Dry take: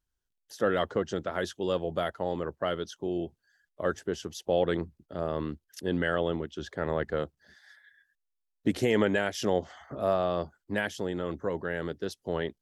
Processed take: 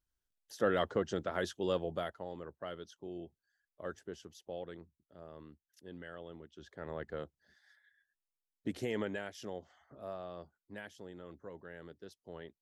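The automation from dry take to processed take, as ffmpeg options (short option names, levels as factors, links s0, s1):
-af "volume=1.78,afade=t=out:st=1.72:d=0.55:silence=0.354813,afade=t=out:st=4.09:d=0.67:silence=0.446684,afade=t=in:st=6.29:d=0.84:silence=0.354813,afade=t=out:st=8.88:d=0.69:silence=0.501187"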